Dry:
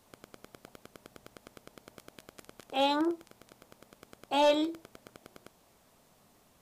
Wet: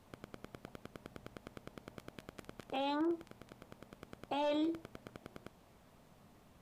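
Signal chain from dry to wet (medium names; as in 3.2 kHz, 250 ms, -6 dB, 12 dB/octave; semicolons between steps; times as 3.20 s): tone controls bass +6 dB, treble -8 dB; peak limiter -28 dBFS, peak gain reduction 11.5 dB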